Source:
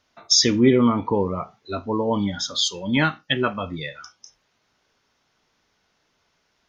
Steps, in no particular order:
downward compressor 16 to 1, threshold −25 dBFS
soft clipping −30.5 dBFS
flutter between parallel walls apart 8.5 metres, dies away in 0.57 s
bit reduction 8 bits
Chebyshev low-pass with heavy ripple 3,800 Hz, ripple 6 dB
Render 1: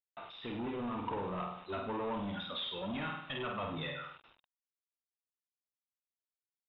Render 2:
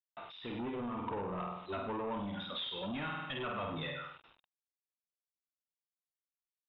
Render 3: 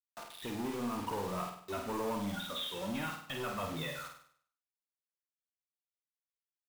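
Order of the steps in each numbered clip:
downward compressor, then flutter between parallel walls, then soft clipping, then bit reduction, then Chebyshev low-pass with heavy ripple
flutter between parallel walls, then bit reduction, then downward compressor, then soft clipping, then Chebyshev low-pass with heavy ripple
downward compressor, then soft clipping, then Chebyshev low-pass with heavy ripple, then bit reduction, then flutter between parallel walls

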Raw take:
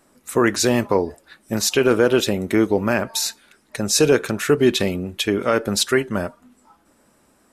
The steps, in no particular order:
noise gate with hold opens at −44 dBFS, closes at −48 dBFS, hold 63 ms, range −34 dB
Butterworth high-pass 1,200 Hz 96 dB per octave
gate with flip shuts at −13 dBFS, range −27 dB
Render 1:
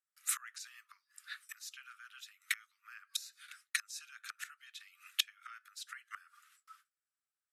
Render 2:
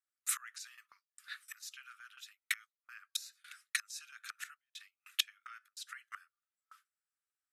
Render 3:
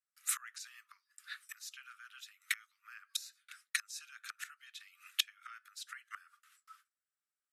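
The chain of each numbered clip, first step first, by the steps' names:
noise gate with hold, then gate with flip, then Butterworth high-pass
gate with flip, then Butterworth high-pass, then noise gate with hold
gate with flip, then noise gate with hold, then Butterworth high-pass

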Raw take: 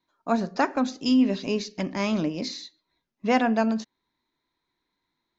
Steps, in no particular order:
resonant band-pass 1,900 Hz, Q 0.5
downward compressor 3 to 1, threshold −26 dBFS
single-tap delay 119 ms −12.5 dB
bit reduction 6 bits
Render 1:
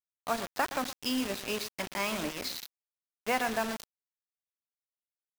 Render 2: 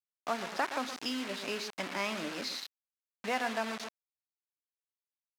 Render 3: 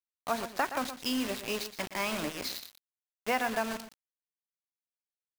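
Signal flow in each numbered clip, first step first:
resonant band-pass, then downward compressor, then single-tap delay, then bit reduction
single-tap delay, then downward compressor, then bit reduction, then resonant band-pass
resonant band-pass, then bit reduction, then single-tap delay, then downward compressor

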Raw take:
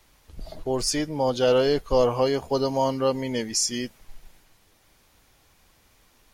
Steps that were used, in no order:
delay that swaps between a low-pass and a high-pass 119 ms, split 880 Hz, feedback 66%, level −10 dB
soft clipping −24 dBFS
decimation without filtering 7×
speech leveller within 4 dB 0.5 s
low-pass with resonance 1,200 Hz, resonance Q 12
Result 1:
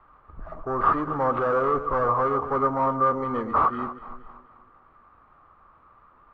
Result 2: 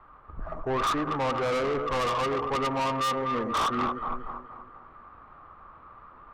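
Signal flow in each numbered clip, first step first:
soft clipping, then delay that swaps between a low-pass and a high-pass, then decimation without filtering, then low-pass with resonance, then speech leveller
delay that swaps between a low-pass and a high-pass, then decimation without filtering, then low-pass with resonance, then soft clipping, then speech leveller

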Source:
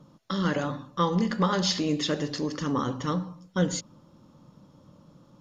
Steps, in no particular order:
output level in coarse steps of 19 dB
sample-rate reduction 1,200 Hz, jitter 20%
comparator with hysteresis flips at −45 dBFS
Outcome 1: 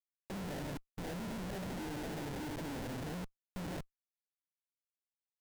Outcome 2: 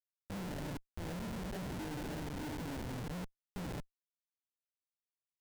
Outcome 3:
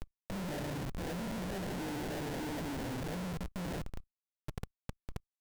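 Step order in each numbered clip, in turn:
output level in coarse steps, then comparator with hysteresis, then sample-rate reduction
sample-rate reduction, then output level in coarse steps, then comparator with hysteresis
comparator with hysteresis, then sample-rate reduction, then output level in coarse steps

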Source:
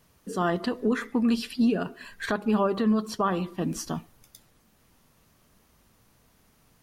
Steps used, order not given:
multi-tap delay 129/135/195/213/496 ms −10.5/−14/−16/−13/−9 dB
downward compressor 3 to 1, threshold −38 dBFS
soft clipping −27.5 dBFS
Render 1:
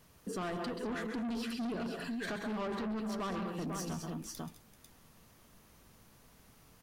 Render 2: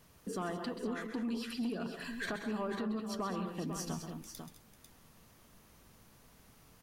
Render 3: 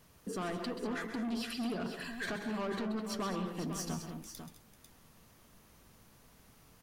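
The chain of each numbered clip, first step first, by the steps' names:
multi-tap delay, then soft clipping, then downward compressor
downward compressor, then multi-tap delay, then soft clipping
soft clipping, then downward compressor, then multi-tap delay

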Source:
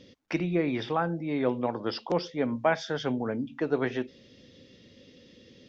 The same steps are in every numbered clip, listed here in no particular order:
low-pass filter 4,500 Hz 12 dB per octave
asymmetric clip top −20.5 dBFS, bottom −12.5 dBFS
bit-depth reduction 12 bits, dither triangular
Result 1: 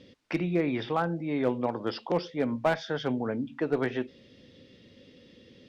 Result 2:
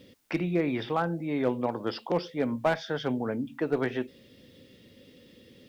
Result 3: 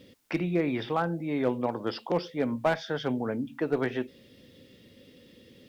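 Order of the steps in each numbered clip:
bit-depth reduction, then low-pass filter, then asymmetric clip
low-pass filter, then asymmetric clip, then bit-depth reduction
low-pass filter, then bit-depth reduction, then asymmetric clip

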